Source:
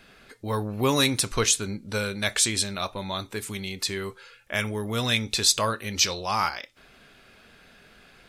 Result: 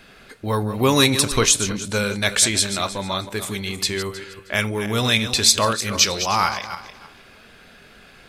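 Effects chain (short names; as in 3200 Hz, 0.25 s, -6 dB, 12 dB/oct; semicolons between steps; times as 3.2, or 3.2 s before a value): regenerating reverse delay 0.157 s, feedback 45%, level -10 dB; gain +5.5 dB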